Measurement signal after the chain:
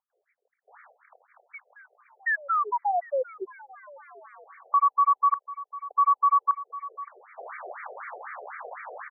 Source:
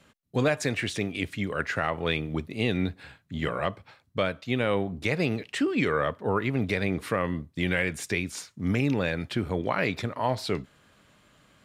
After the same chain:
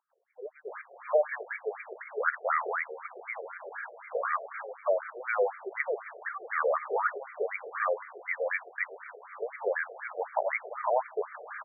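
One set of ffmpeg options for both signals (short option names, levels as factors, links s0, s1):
-filter_complex "[0:a]aeval=exprs='val(0)+0.5*0.0266*sgn(val(0))':c=same,acrossover=split=330|3400[s0][s1][s2];[s2]adelay=100[s3];[s1]adelay=680[s4];[s0][s4][s3]amix=inputs=3:normalize=0,afftfilt=real='re*between(b*sr/1024,530*pow(1700/530,0.5+0.5*sin(2*PI*4*pts/sr))/1.41,530*pow(1700/530,0.5+0.5*sin(2*PI*4*pts/sr))*1.41)':imag='im*between(b*sr/1024,530*pow(1700/530,0.5+0.5*sin(2*PI*4*pts/sr))/1.41,530*pow(1700/530,0.5+0.5*sin(2*PI*4*pts/sr))*1.41)':win_size=1024:overlap=0.75,volume=1.41"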